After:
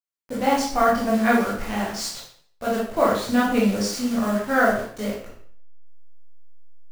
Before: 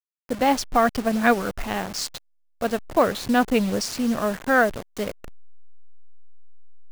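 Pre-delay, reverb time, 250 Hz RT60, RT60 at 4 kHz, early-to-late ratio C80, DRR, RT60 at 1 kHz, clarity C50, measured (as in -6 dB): 16 ms, 0.55 s, 0.50 s, 0.50 s, 7.0 dB, -7.0 dB, 0.55 s, 2.5 dB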